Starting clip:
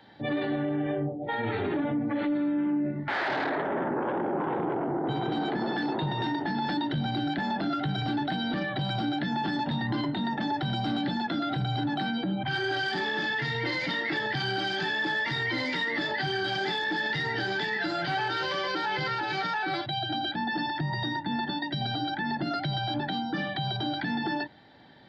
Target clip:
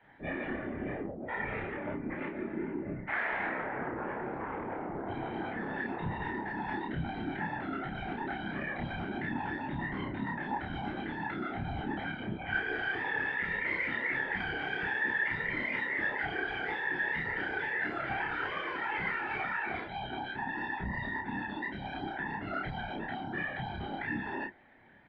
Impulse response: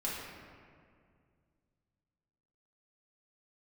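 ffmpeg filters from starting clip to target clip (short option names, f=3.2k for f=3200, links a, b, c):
-filter_complex "[0:a]flanger=delay=17.5:depth=3.3:speed=2.9,highshelf=f=3.2k:t=q:w=3:g=-13,acrossover=split=260|680|2300[a][b][c][d];[b]asoftclip=type=tanh:threshold=-36dB[e];[a][e][c][d]amix=inputs=4:normalize=0,afftfilt=real='hypot(re,im)*cos(2*PI*random(0))':imag='hypot(re,im)*sin(2*PI*random(1))':win_size=512:overlap=0.75,asplit=2[f][g];[g]adelay=30,volume=-3dB[h];[f][h]amix=inputs=2:normalize=0"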